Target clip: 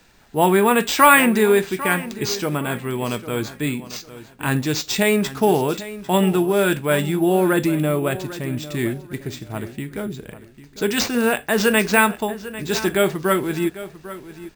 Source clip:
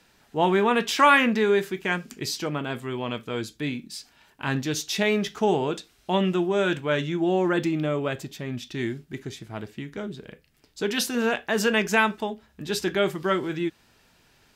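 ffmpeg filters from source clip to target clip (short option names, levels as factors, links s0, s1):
-filter_complex "[0:a]lowshelf=f=61:g=10,asplit=2[s0][s1];[s1]adelay=798,lowpass=f=4700:p=1,volume=0.178,asplit=2[s2][s3];[s3]adelay=798,lowpass=f=4700:p=1,volume=0.28,asplit=2[s4][s5];[s5]adelay=798,lowpass=f=4700:p=1,volume=0.28[s6];[s0][s2][s4][s6]amix=inputs=4:normalize=0,acrusher=samples=4:mix=1:aa=0.000001,bandreject=f=3100:w=22,volume=1.78"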